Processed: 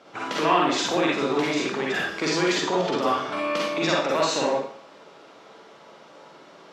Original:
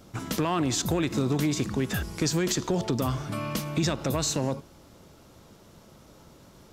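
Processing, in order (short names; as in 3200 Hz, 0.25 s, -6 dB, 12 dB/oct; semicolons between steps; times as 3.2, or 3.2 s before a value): BPF 490–3300 Hz; reverb RT60 0.50 s, pre-delay 39 ms, DRR -3.5 dB; gain +5.5 dB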